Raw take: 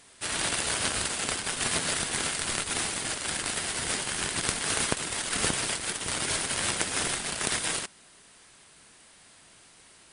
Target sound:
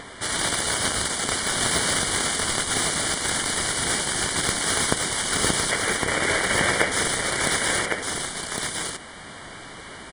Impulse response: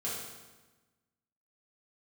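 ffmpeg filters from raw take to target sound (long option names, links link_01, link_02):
-filter_complex "[0:a]asettb=1/sr,asplit=3[link_01][link_02][link_03];[link_01]atrim=end=5.714[link_04];[link_02]atrim=start=5.71:end=6.92,asetpts=PTS-STARTPTS,afade=type=in:duration=0.004:curve=qsin,afade=type=out:start_time=1.206:duration=0.004:curve=qsin,equalizer=frequency=500:width_type=o:width=1:gain=8,equalizer=frequency=2000:width_type=o:width=1:gain=9,equalizer=frequency=4000:width_type=o:width=1:gain=-5,equalizer=frequency=8000:width_type=o:width=1:gain=-10[link_05];[link_03]atrim=start=6.916[link_06];[link_04][link_05]acrossfade=duration=0.004:curve1=hsin:curve2=qsin[link_07];[link_07][link_06]acrossfade=duration=0.004:curve1=qsin:curve2=hsin,acrossover=split=3100[link_08][link_09];[link_08]acompressor=mode=upward:threshold=-34dB:ratio=2.5[link_10];[link_09]asoftclip=type=tanh:threshold=-24dB[link_11];[link_10][link_11]amix=inputs=2:normalize=0,asuperstop=centerf=2600:order=12:qfactor=5,aecho=1:1:1108:0.631,volume=5.5dB"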